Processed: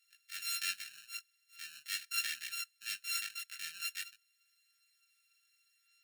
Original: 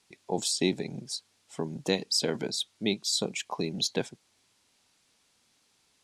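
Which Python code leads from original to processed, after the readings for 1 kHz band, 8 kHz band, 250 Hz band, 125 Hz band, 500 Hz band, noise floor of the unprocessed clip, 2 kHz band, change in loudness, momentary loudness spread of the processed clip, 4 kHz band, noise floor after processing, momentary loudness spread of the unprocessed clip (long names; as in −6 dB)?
−12.0 dB, −7.5 dB, below −40 dB, below −40 dB, below −40 dB, −70 dBFS, −0.5 dB, −8.5 dB, 12 LU, −9.0 dB, −76 dBFS, 11 LU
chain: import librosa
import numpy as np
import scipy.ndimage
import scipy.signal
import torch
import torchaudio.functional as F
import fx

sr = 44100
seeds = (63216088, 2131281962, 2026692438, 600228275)

y = np.r_[np.sort(x[:len(x) // 32 * 32].reshape(-1, 32), axis=1).ravel(), x[len(x) // 32 * 32:]]
y = scipy.signal.sosfilt(scipy.signal.ellip(4, 1.0, 40, 1700.0, 'highpass', fs=sr, output='sos'), y)
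y = fx.transient(y, sr, attack_db=-7, sustain_db=-2)
y = fx.chorus_voices(y, sr, voices=2, hz=0.42, base_ms=18, depth_ms=2.3, mix_pct=45)
y = F.gain(torch.from_numpy(y), 2.0).numpy()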